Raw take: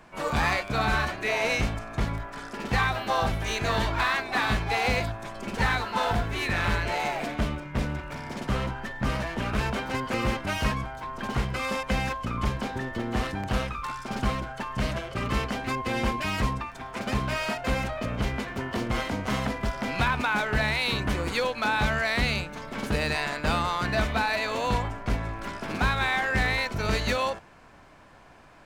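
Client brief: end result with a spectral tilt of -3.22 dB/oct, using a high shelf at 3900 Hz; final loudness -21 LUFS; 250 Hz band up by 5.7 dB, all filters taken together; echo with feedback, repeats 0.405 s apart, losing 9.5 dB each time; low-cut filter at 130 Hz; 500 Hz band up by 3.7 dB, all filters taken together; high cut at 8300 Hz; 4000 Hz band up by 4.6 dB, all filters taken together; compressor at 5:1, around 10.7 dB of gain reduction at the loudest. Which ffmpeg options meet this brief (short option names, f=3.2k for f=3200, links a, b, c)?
-af "highpass=130,lowpass=8.3k,equalizer=f=250:t=o:g=7,equalizer=f=500:t=o:g=3,highshelf=f=3.9k:g=-4.5,equalizer=f=4k:t=o:g=8,acompressor=threshold=-32dB:ratio=5,aecho=1:1:405|810|1215|1620:0.335|0.111|0.0365|0.012,volume=13.5dB"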